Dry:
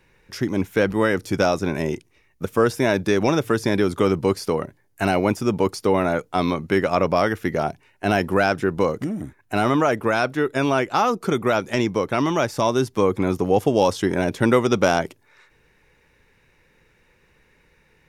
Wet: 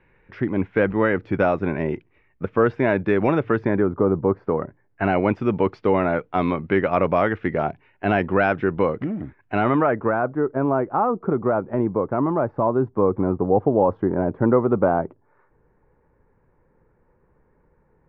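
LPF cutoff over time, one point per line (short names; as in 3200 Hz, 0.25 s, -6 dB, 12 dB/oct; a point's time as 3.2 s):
LPF 24 dB/oct
3.56 s 2400 Hz
4.02 s 1100 Hz
5.3 s 2700 Hz
9.56 s 2700 Hz
10.3 s 1200 Hz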